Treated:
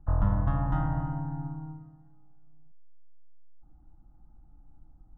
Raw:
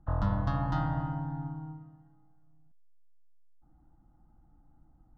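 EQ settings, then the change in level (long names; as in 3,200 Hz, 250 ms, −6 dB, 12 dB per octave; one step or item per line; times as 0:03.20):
moving average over 10 samples
low-shelf EQ 60 Hz +11 dB
0.0 dB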